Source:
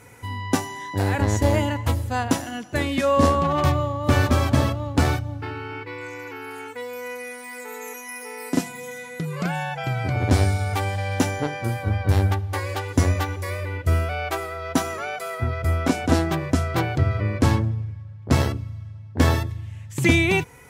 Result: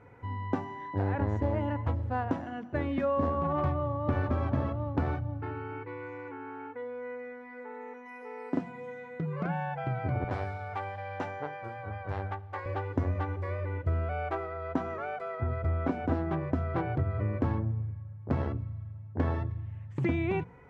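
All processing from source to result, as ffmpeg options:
-filter_complex "[0:a]asettb=1/sr,asplit=3[a][b][c];[a]atrim=end=6.294[d];[b]atrim=start=6.29:end=8.06,asetpts=PTS-STARTPTS,afade=t=in:d=0.004:c=qsin,afade=t=out:st=1.766:d=0.004:c=qsin,aemphasis=mode=reproduction:type=75kf,aecho=1:1:3.5:0.37,atrim=end_sample=78057[e];[c]atrim=start=8.056[f];[d][e]acrossfade=d=0.004:c1=hsin:c2=qsin[g];[g][f]acrossfade=d=0.004:c1=qsin:c2=hsin,asettb=1/sr,asplit=3[h][i][j];[h]atrim=end=10.244[k];[i]atrim=start=10.24:end=12.66,asetpts=PTS-STARTPTS,afade=t=in:d=0.004:c=qsin,afade=t=out:st=2.416:d=0.004:c=qsin,highpass=160,equalizer=f=250:t=o:w=1.6:g=-14[l];[j]atrim=start=12.656[m];[k][l]acrossfade=d=0.004:c1=hsin:c2=qsin[n];[n][m]acrossfade=d=0.004:c1=qsin:c2=hsin,lowpass=1.4k,bandreject=f=60:t=h:w=6,bandreject=f=120:t=h:w=6,bandreject=f=180:t=h:w=6,bandreject=f=240:t=h:w=6,acompressor=threshold=-21dB:ratio=4,volume=-4.5dB"

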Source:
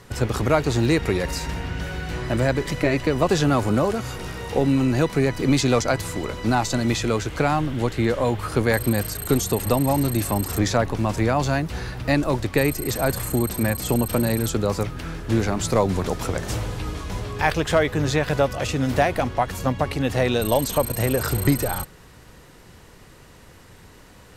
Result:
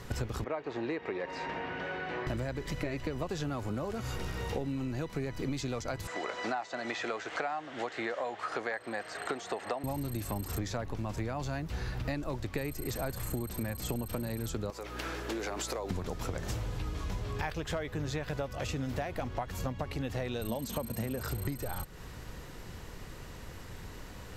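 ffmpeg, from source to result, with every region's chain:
-filter_complex "[0:a]asettb=1/sr,asplit=3[a][b][c];[a]atrim=end=0.444[d];[b]atrim=start=0.44:end=2.27,asetpts=PTS-STARTPTS,afade=t=in:d=0.004:c=qsin,afade=t=out:st=1.826:d=0.004:c=qsin,highpass=380,lowpass=2.1k,bandreject=f=1.4k:w=14[e];[c]atrim=start=2.266[f];[d][e]acrossfade=d=0.004:c1=hsin:c2=qsin[g];[g][f]acrossfade=d=0.004:c1=qsin:c2=hsin,asettb=1/sr,asplit=3[h][i][j];[h]atrim=end=6.074[k];[i]atrim=start=6.07:end=9.84,asetpts=PTS-STARTPTS,afade=t=in:d=0.004:c=qsin,afade=t=out:st=3.766:d=0.004:c=qsin,acrossover=split=3500[l][m];[m]acompressor=threshold=-40dB:ratio=4:attack=1:release=60[n];[l][n]amix=inputs=2:normalize=0,highpass=470,equalizer=f=710:t=q:w=4:g=8,equalizer=f=1.3k:t=q:w=4:g=3,equalizer=f=1.8k:t=q:w=4:g=6,lowpass=f=8.1k:w=0.5412,lowpass=f=8.1k:w=1.3066[o];[j]atrim=start=9.836[p];[k][o]acrossfade=d=0.004:c1=hsin:c2=qsin[q];[q][p]acrossfade=d=0.004:c1=qsin:c2=hsin,asettb=1/sr,asplit=3[r][s][t];[r]atrim=end=14.704[u];[s]atrim=start=14.7:end=15.91,asetpts=PTS-STARTPTS,afade=t=in:d=0.004:c=qsin,afade=t=out:st=1.206:d=0.004:c=qsin,highpass=f=330:w=0.5412,highpass=f=330:w=1.3066,acompressor=threshold=-28dB:ratio=6:attack=3.2:release=140:knee=1:detection=peak,aeval=exprs='val(0)+0.00562*(sin(2*PI*60*n/s)+sin(2*PI*2*60*n/s)/2+sin(2*PI*3*60*n/s)/3+sin(2*PI*4*60*n/s)/4+sin(2*PI*5*60*n/s)/5)':c=same[v];[t]atrim=start=15.906[w];[u][v]acrossfade=d=0.004:c1=hsin:c2=qsin[x];[x][w]acrossfade=d=0.004:c1=qsin:c2=hsin,asettb=1/sr,asplit=3[y][z][aa];[y]atrim=end=20.494[ab];[z]atrim=start=20.49:end=21.19,asetpts=PTS-STARTPTS,afade=t=in:d=0.004:c=qsin,afade=t=out:st=0.696:d=0.004:c=qsin,highpass=41,equalizer=f=220:t=o:w=0.34:g=12.5[ac];[aa]atrim=start=21.186[ad];[ab][ac]acrossfade=d=0.004:c1=hsin:c2=qsin[ae];[ae][ad]acrossfade=d=0.004:c1=qsin:c2=hsin,lowshelf=f=69:g=7.5,acompressor=threshold=-32dB:ratio=10,equalizer=f=9.3k:w=7.9:g=-12"

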